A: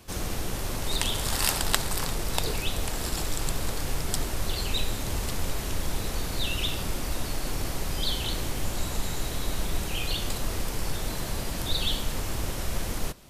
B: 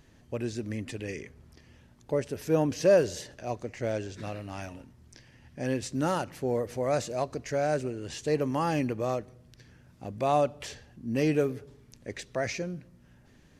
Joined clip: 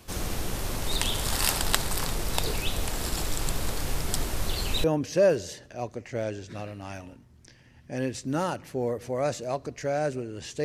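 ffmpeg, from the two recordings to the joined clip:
-filter_complex "[0:a]apad=whole_dur=10.64,atrim=end=10.64,atrim=end=4.842[a];[1:a]atrim=start=2.518:end=8.32[b];[a][b]acrossfade=d=0.004:c1=hsin:c2=hsin"

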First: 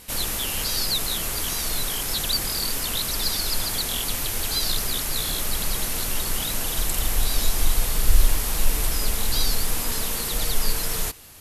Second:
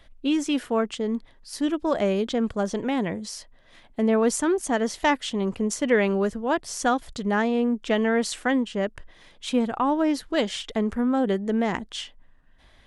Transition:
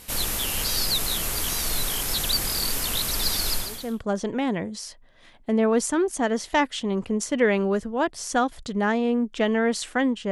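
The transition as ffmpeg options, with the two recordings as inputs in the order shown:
-filter_complex "[0:a]apad=whole_dur=10.31,atrim=end=10.31,atrim=end=4.05,asetpts=PTS-STARTPTS[a];[1:a]atrim=start=2.01:end=8.81,asetpts=PTS-STARTPTS[b];[a][b]acrossfade=d=0.54:c1=qua:c2=qua"

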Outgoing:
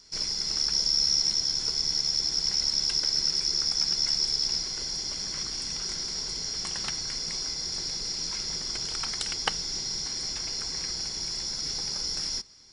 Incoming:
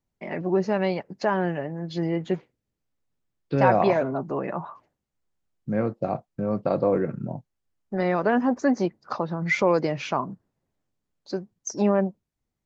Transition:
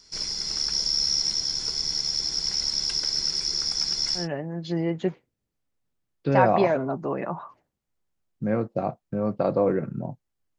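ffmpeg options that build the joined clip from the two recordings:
-filter_complex "[0:a]apad=whole_dur=10.58,atrim=end=10.58,atrim=end=4.28,asetpts=PTS-STARTPTS[a];[1:a]atrim=start=1.4:end=7.84,asetpts=PTS-STARTPTS[b];[a][b]acrossfade=d=0.14:c1=tri:c2=tri"

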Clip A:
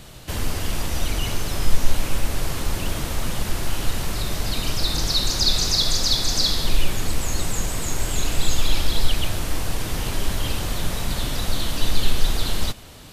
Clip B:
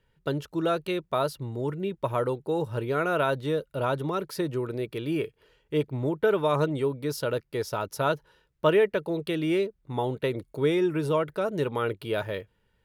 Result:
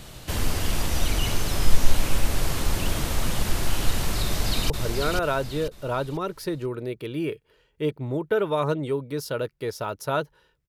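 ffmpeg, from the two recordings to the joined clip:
-filter_complex "[0:a]apad=whole_dur=10.68,atrim=end=10.68,atrim=end=4.702[a];[1:a]atrim=start=2.618:end=8.6[b];[a][b]acrossfade=d=0.004:c1=hsin:c2=hsin,asplit=2[c][d];[d]afade=t=in:st=4.24:d=0.01,afade=t=out:st=4.7:d=0.01,aecho=0:1:490|980|1470|1960:0.630957|0.220835|0.0772923|0.0270523[e];[c][e]amix=inputs=2:normalize=0"

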